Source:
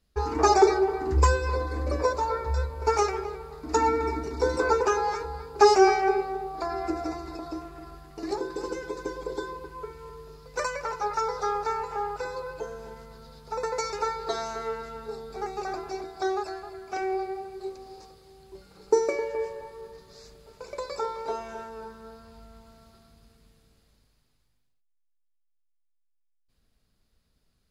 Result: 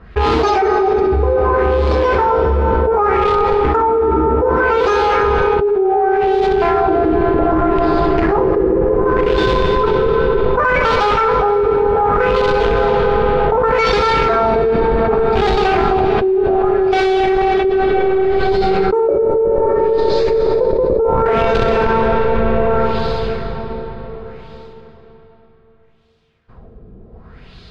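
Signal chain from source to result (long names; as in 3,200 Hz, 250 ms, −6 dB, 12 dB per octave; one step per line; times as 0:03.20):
high-shelf EQ 5,500 Hz −6.5 dB
notch comb filter 290 Hz
in parallel at −6 dB: comparator with hysteresis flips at −33 dBFS
on the sum: auto-filter low-pass sine 0.66 Hz 380–3,900 Hz
flutter between parallel walls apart 10.9 metres, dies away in 0.35 s
comb and all-pass reverb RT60 4.8 s, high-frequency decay 0.6×, pre-delay 120 ms, DRR 7 dB
envelope flattener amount 100%
level −7 dB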